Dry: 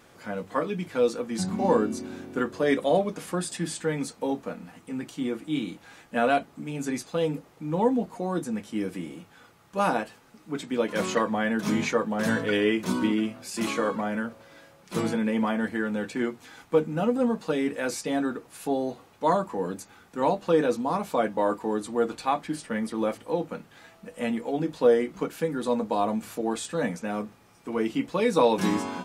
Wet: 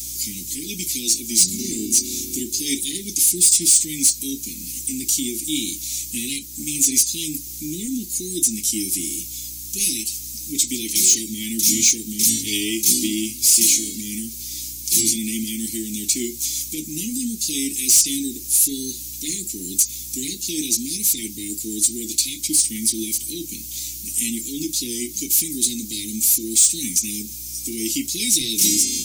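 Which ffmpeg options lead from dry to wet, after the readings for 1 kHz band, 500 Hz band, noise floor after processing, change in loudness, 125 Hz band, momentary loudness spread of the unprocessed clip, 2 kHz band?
under -40 dB, -12.5 dB, -34 dBFS, +8.5 dB, -3.0 dB, 12 LU, -3.0 dB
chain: -filter_complex "[0:a]aemphasis=mode=production:type=75fm,aeval=exprs='val(0)+0.00355*(sin(2*PI*60*n/s)+sin(2*PI*2*60*n/s)/2+sin(2*PI*3*60*n/s)/3+sin(2*PI*4*60*n/s)/4+sin(2*PI*5*60*n/s)/5)':c=same,asplit=2[a][b];[b]acompressor=threshold=-34dB:ratio=6,volume=1dB[c];[a][c]amix=inputs=2:normalize=0,aexciter=amount=2:drive=9:freq=3.7k,equalizer=f=160:t=o:w=0.67:g=-8,equalizer=f=630:t=o:w=0.67:g=11,equalizer=f=6.3k:t=o:w=0.67:g=9,asoftclip=type=tanh:threshold=-8.5dB,asuperstop=centerf=890:order=20:qfactor=0.5"

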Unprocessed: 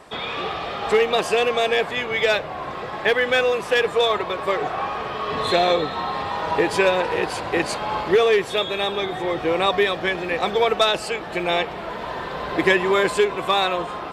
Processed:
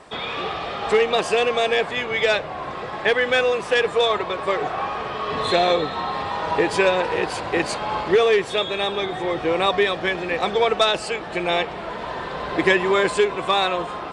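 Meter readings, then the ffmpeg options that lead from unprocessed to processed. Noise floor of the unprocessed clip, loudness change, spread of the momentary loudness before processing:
-32 dBFS, 0.0 dB, 9 LU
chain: -af "aresample=22050,aresample=44100"

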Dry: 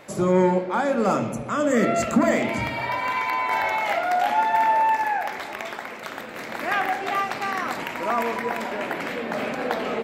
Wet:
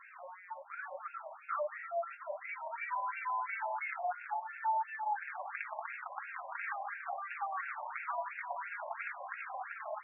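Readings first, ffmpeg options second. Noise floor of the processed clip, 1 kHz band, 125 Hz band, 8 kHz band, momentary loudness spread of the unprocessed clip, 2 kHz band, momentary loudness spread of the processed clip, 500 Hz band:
-54 dBFS, -14.0 dB, under -40 dB, under -40 dB, 11 LU, -13.5 dB, 8 LU, -19.0 dB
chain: -af "acompressor=threshold=-30dB:ratio=6,flanger=delay=3.6:depth=3.2:regen=-1:speed=0.32:shape=triangular,afftfilt=real='re*between(b*sr/1024,770*pow(2000/770,0.5+0.5*sin(2*PI*2.9*pts/sr))/1.41,770*pow(2000/770,0.5+0.5*sin(2*PI*2.9*pts/sr))*1.41)':imag='im*between(b*sr/1024,770*pow(2000/770,0.5+0.5*sin(2*PI*2.9*pts/sr))/1.41,770*pow(2000/770,0.5+0.5*sin(2*PI*2.9*pts/sr))*1.41)':win_size=1024:overlap=0.75,volume=1dB"

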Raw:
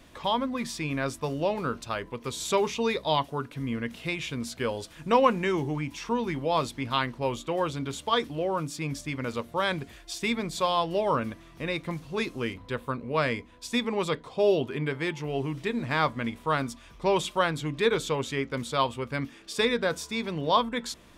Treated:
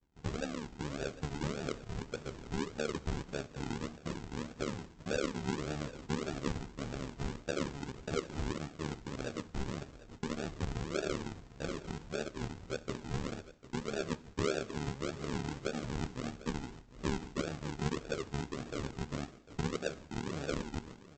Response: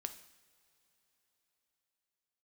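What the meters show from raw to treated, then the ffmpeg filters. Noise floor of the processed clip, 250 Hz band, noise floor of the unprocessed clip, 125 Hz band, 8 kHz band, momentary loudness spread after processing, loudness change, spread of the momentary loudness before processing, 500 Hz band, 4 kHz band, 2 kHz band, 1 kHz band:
-56 dBFS, -7.5 dB, -52 dBFS, -5.0 dB, -7.5 dB, 6 LU, -10.5 dB, 8 LU, -11.5 dB, -12.5 dB, -11.5 dB, -16.0 dB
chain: -filter_complex "[0:a]equalizer=f=125:t=o:w=1:g=-6,equalizer=f=250:t=o:w=1:g=-7,equalizer=f=1k:t=o:w=1:g=-12,equalizer=f=2k:t=o:w=1:g=-9,equalizer=f=4k:t=o:w=1:g=-5,acrossover=split=4600[a][b];[b]acompressor=threshold=-50dB:ratio=4:attack=1:release=60[c];[a][c]amix=inputs=2:normalize=0,aemphasis=mode=reproduction:type=50kf,agate=range=-33dB:threshold=-48dB:ratio=3:detection=peak,acompressor=threshold=-36dB:ratio=2.5,tremolo=f=73:d=0.947,aresample=16000,acrusher=samples=22:mix=1:aa=0.000001:lfo=1:lforange=13.2:lforate=1.7,aresample=44100,aecho=1:1:749:0.141,asplit=2[d][e];[1:a]atrim=start_sample=2205[f];[e][f]afir=irnorm=-1:irlink=0,volume=-1dB[g];[d][g]amix=inputs=2:normalize=0,volume=1dB"

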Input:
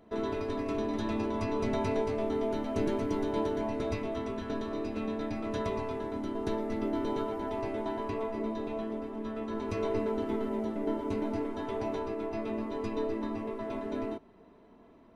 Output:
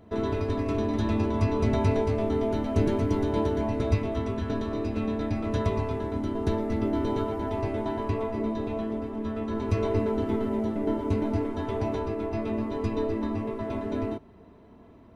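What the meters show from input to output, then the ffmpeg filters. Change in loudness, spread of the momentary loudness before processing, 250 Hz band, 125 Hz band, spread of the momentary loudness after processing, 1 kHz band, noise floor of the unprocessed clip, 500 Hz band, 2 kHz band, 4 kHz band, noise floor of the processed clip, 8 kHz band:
+5.5 dB, 5 LU, +5.5 dB, +13.0 dB, 6 LU, +3.0 dB, -57 dBFS, +4.0 dB, +3.0 dB, +3.0 dB, -52 dBFS, n/a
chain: -af "equalizer=f=84:t=o:w=1.6:g=12.5,volume=3dB"

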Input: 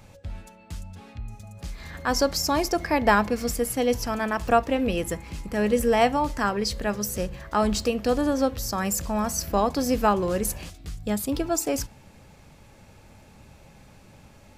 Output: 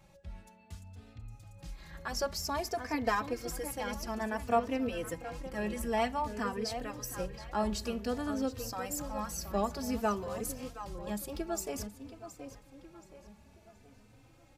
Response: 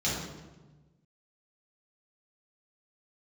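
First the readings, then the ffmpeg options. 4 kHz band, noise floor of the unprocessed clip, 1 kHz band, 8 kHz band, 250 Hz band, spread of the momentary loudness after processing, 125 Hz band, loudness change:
-10.5 dB, -52 dBFS, -10.0 dB, -10.5 dB, -10.5 dB, 19 LU, -10.0 dB, -10.5 dB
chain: -filter_complex "[0:a]asplit=2[a][b];[b]adelay=723,lowpass=f=4.9k:p=1,volume=-11dB,asplit=2[c][d];[d]adelay=723,lowpass=f=4.9k:p=1,volume=0.47,asplit=2[e][f];[f]adelay=723,lowpass=f=4.9k:p=1,volume=0.47,asplit=2[g][h];[h]adelay=723,lowpass=f=4.9k:p=1,volume=0.47,asplit=2[i][j];[j]adelay=723,lowpass=f=4.9k:p=1,volume=0.47[k];[c][e][g][i][k]amix=inputs=5:normalize=0[l];[a][l]amix=inputs=2:normalize=0,asplit=2[m][n];[n]adelay=3.2,afreqshift=0.54[o];[m][o]amix=inputs=2:normalize=1,volume=-7.5dB"

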